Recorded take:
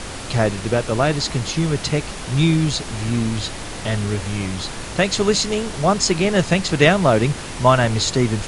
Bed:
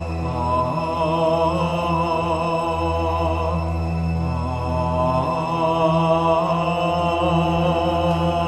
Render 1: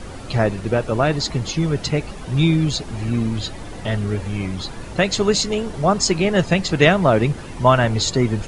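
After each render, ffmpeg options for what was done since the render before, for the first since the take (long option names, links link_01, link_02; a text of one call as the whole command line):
ffmpeg -i in.wav -af "afftdn=noise_reduction=11:noise_floor=-31" out.wav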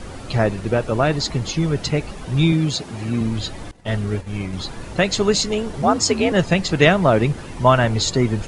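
ffmpeg -i in.wav -filter_complex "[0:a]asettb=1/sr,asplit=3[link_01][link_02][link_03];[link_01]atrim=end=2.524[link_04];[link_02]atrim=start=2.52:end=3.21,asetpts=PTS-STARTPTS,afade=type=in:duration=0.004:curve=qsin,afade=type=out:start_time=0.686:duration=0.004:curve=qsin,highpass=110[link_05];[link_03]atrim=start=3.206[link_06];[link_04][link_05]acrossfade=duration=0.004:curve1=hsin:curve2=qsin[link_07];[link_07][link_06]acrossfade=duration=0.004:curve1=qsin:curve2=hsin,asettb=1/sr,asplit=3[link_08][link_09][link_10];[link_08]atrim=end=3.714[link_11];[link_09]atrim=start=3.71:end=4.53,asetpts=PTS-STARTPTS,afade=type=in:duration=0.004:curve=qsin,afade=type=out:start_time=0.816:duration=0.004:curve=qsin,agate=range=-33dB:threshold=-22dB:ratio=3:release=100:detection=peak[link_12];[link_10]atrim=start=4.526[link_13];[link_11][link_12]acrossfade=duration=0.004:curve1=hsin:curve2=qsin[link_14];[link_14][link_13]acrossfade=duration=0.004:curve1=qsin:curve2=hsin,asettb=1/sr,asplit=3[link_15][link_16][link_17];[link_15]atrim=end=5.824[link_18];[link_16]atrim=start=5.82:end=6.32,asetpts=PTS-STARTPTS,afade=type=in:duration=0.004:curve=qsin,afade=type=out:start_time=0.496:duration=0.004:curve=qsin,afreqshift=61[link_19];[link_17]atrim=start=6.316[link_20];[link_18][link_19]acrossfade=duration=0.004:curve1=hsin:curve2=qsin[link_21];[link_21][link_20]acrossfade=duration=0.004:curve1=qsin:curve2=hsin" out.wav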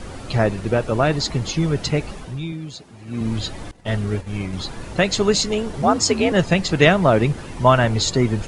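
ffmpeg -i in.wav -filter_complex "[0:a]asplit=3[link_01][link_02][link_03];[link_01]atrim=end=2.4,asetpts=PTS-STARTPTS,afade=type=out:start_time=2.15:duration=0.25:silence=0.237137[link_04];[link_02]atrim=start=2.4:end=3.06,asetpts=PTS-STARTPTS,volume=-12.5dB[link_05];[link_03]atrim=start=3.06,asetpts=PTS-STARTPTS,afade=type=in:duration=0.25:silence=0.237137[link_06];[link_04][link_05][link_06]concat=n=3:v=0:a=1" out.wav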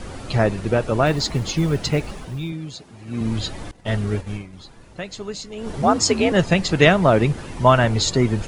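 ffmpeg -i in.wav -filter_complex "[0:a]asettb=1/sr,asplit=3[link_01][link_02][link_03];[link_01]atrim=end=1.064[link_04];[link_02]atrim=start=1.06:end=2.5,asetpts=PTS-STARTPTS,afade=type=in:duration=0.004:curve=qsin,afade=type=out:start_time=1.436:duration=0.004:curve=qsin,acrusher=bits=8:mode=log:mix=0:aa=0.000001[link_05];[link_03]atrim=start=2.496[link_06];[link_04][link_05]acrossfade=duration=0.004:curve1=hsin:curve2=qsin[link_07];[link_07][link_06]acrossfade=duration=0.004:curve1=qsin:curve2=hsin,asplit=3[link_08][link_09][link_10];[link_08]atrim=end=4.49,asetpts=PTS-STARTPTS,afade=type=out:start_time=4.32:duration=0.17:curve=qua:silence=0.211349[link_11];[link_09]atrim=start=4.49:end=5.52,asetpts=PTS-STARTPTS,volume=-13.5dB[link_12];[link_10]atrim=start=5.52,asetpts=PTS-STARTPTS,afade=type=in:duration=0.17:curve=qua:silence=0.211349[link_13];[link_11][link_12][link_13]concat=n=3:v=0:a=1" out.wav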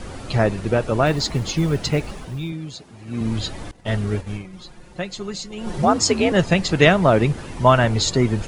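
ffmpeg -i in.wav -filter_complex "[0:a]asettb=1/sr,asplit=3[link_01][link_02][link_03];[link_01]atrim=end=4.444[link_04];[link_02]atrim=start=4.44:end=5.85,asetpts=PTS-STARTPTS,afade=type=in:duration=0.004:curve=qsin,afade=type=out:start_time=1.406:duration=0.004:curve=qsin,aecho=1:1:5.6:0.73,atrim=end_sample=62181[link_05];[link_03]atrim=start=5.846[link_06];[link_04][link_05]acrossfade=duration=0.004:curve1=hsin:curve2=qsin[link_07];[link_07][link_06]acrossfade=duration=0.004:curve1=qsin:curve2=hsin" out.wav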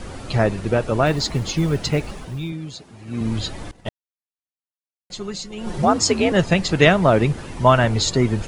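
ffmpeg -i in.wav -filter_complex "[0:a]asplit=3[link_01][link_02][link_03];[link_01]atrim=end=3.89,asetpts=PTS-STARTPTS,afade=type=out:start_time=3.886:duration=0.004:curve=hsin[link_04];[link_02]atrim=start=3.89:end=5.1,asetpts=PTS-STARTPTS,volume=0[link_05];[link_03]atrim=start=5.1,asetpts=PTS-STARTPTS,afade=type=in:duration=0.004:curve=hsin[link_06];[link_04][link_05][link_06]concat=n=3:v=0:a=1" out.wav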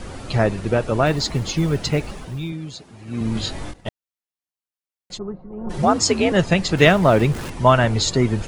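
ffmpeg -i in.wav -filter_complex "[0:a]asettb=1/sr,asplit=3[link_01][link_02][link_03];[link_01]atrim=end=3.334[link_04];[link_02]atrim=start=3.33:end=3.78,asetpts=PTS-STARTPTS,afade=type=in:duration=0.004:curve=qsin,afade=type=out:start_time=0.446:duration=0.004:curve=qsin,asplit=2[link_05][link_06];[link_06]adelay=23,volume=-2.5dB[link_07];[link_05][link_07]amix=inputs=2:normalize=0,atrim=end_sample=19845[link_08];[link_03]atrim=start=3.776[link_09];[link_04][link_08]acrossfade=duration=0.004:curve1=hsin:curve2=qsin[link_10];[link_10][link_09]acrossfade=duration=0.004:curve1=qsin:curve2=hsin,asplit=3[link_11][link_12][link_13];[link_11]afade=type=out:start_time=5.17:duration=0.02[link_14];[link_12]lowpass=frequency=1100:width=0.5412,lowpass=frequency=1100:width=1.3066,afade=type=in:start_time=5.17:duration=0.02,afade=type=out:start_time=5.69:duration=0.02[link_15];[link_13]afade=type=in:start_time=5.69:duration=0.02[link_16];[link_14][link_15][link_16]amix=inputs=3:normalize=0,asettb=1/sr,asplit=3[link_17][link_18][link_19];[link_17]atrim=end=6.774[link_20];[link_18]atrim=start=6.77:end=7.5,asetpts=PTS-STARTPTS,afade=type=in:duration=0.004:curve=qsin,afade=type=out:start_time=0.726:duration=0.004:curve=qsin,aeval=exprs='val(0)+0.5*0.0316*sgn(val(0))':channel_layout=same[link_21];[link_19]atrim=start=7.496[link_22];[link_20][link_21]acrossfade=duration=0.004:curve1=hsin:curve2=qsin[link_23];[link_23][link_22]acrossfade=duration=0.004:curve1=qsin:curve2=hsin" out.wav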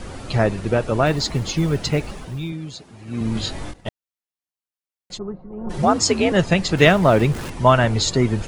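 ffmpeg -i in.wav -af anull out.wav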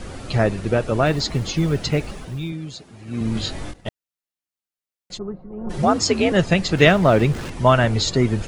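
ffmpeg -i in.wav -filter_complex "[0:a]acrossover=split=7600[link_01][link_02];[link_02]acompressor=threshold=-46dB:ratio=4:attack=1:release=60[link_03];[link_01][link_03]amix=inputs=2:normalize=0,equalizer=frequency=940:width=3.2:gain=-3" out.wav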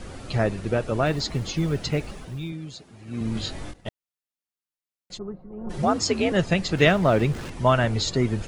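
ffmpeg -i in.wav -af "volume=-4.5dB" out.wav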